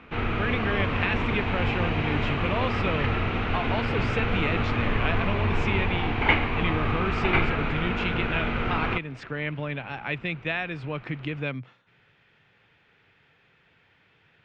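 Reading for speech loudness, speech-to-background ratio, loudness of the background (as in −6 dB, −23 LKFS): −31.0 LKFS, −4.0 dB, −27.0 LKFS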